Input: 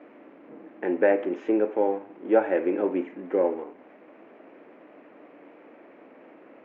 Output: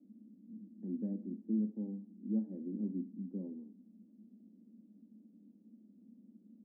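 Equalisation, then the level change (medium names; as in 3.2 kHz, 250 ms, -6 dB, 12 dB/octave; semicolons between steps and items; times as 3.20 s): Butterworth band-pass 210 Hz, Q 5.1; +7.5 dB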